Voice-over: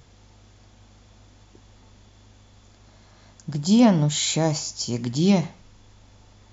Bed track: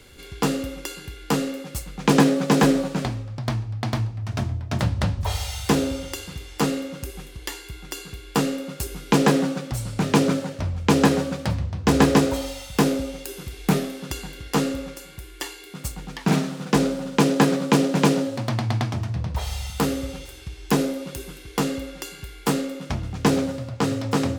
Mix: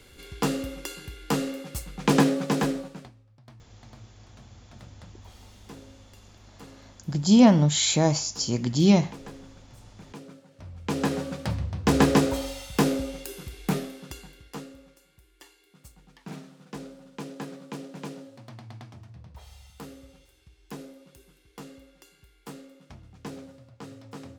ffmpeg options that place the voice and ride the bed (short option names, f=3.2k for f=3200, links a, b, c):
-filter_complex "[0:a]adelay=3600,volume=0.5dB[a];[1:a]volume=19dB,afade=t=out:st=2.2:d=0.92:silence=0.0794328,afade=t=in:st=10.48:d=1.24:silence=0.0749894,afade=t=out:st=13.15:d=1.52:silence=0.141254[b];[a][b]amix=inputs=2:normalize=0"